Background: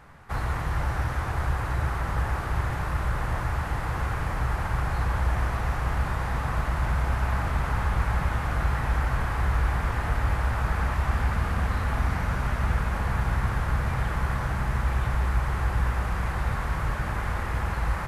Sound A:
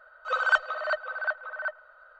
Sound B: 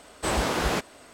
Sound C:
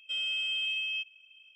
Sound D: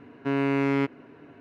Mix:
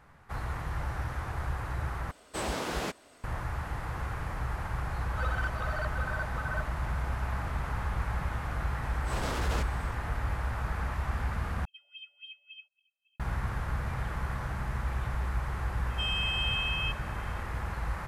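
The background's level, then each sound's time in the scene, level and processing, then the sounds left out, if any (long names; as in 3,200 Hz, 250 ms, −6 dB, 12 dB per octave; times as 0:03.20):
background −7 dB
0:02.11: overwrite with B −7.5 dB
0:04.92: mix in A −1 dB + downward compressor, threshold −32 dBFS
0:08.82: mix in B −9.5 dB + transient designer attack −12 dB, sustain +7 dB
0:11.65: overwrite with C −8.5 dB + LFO wah 3.6 Hz 660–3,800 Hz, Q 6.7
0:15.89: mix in C
not used: D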